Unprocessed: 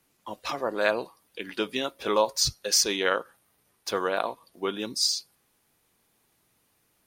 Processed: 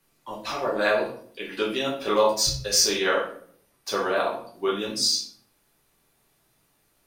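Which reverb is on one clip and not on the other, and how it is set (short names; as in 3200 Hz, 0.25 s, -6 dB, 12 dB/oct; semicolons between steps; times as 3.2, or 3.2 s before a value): shoebox room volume 62 m³, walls mixed, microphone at 1.1 m; gain -2.5 dB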